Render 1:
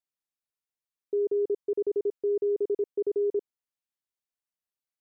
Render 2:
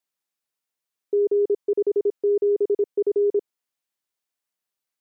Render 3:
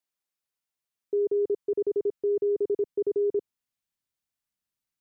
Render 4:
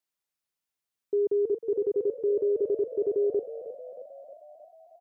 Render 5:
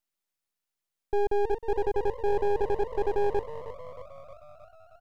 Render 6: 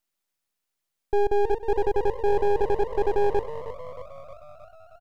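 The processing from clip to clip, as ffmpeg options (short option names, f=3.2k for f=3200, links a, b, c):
-af "highpass=f=190:p=1,volume=7dB"
-af "asubboost=boost=4.5:cutoff=220,volume=-3.5dB"
-filter_complex "[0:a]asplit=8[a][b][c][d][e][f][g][h];[b]adelay=313,afreqshift=48,volume=-14dB[i];[c]adelay=626,afreqshift=96,volume=-17.9dB[j];[d]adelay=939,afreqshift=144,volume=-21.8dB[k];[e]adelay=1252,afreqshift=192,volume=-25.6dB[l];[f]adelay=1565,afreqshift=240,volume=-29.5dB[m];[g]adelay=1878,afreqshift=288,volume=-33.4dB[n];[h]adelay=2191,afreqshift=336,volume=-37.3dB[o];[a][i][j][k][l][m][n][o]amix=inputs=8:normalize=0"
-af "aeval=exprs='max(val(0),0)':c=same,volume=4dB"
-af "aecho=1:1:99:0.0841,volume=4dB"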